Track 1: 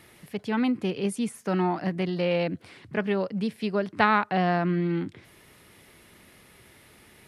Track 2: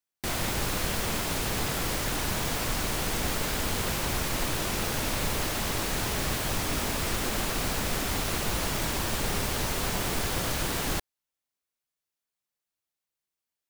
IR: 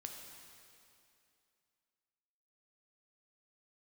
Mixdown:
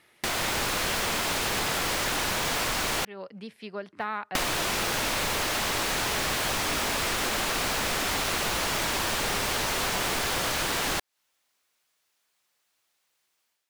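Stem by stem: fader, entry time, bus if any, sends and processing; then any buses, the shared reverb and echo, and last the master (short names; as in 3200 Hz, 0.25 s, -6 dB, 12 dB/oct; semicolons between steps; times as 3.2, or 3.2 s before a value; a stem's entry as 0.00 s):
-12.5 dB, 0.00 s, no send, de-esser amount 85%
+0.5 dB, 0.00 s, muted 3.05–4.35, no send, AGC gain up to 10 dB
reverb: off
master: overdrive pedal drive 12 dB, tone 5900 Hz, clips at -1.5 dBFS; compressor 6:1, threshold -26 dBFS, peak gain reduction 12 dB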